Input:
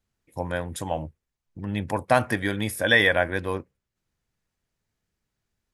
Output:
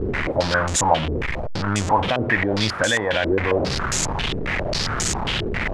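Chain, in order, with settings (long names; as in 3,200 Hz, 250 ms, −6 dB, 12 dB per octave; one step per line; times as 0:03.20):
linear delta modulator 64 kbit/s, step −22.5 dBFS
brickwall limiter −14.5 dBFS, peak gain reduction 9.5 dB
low-pass on a step sequencer 7.4 Hz 410–7,100 Hz
level +4 dB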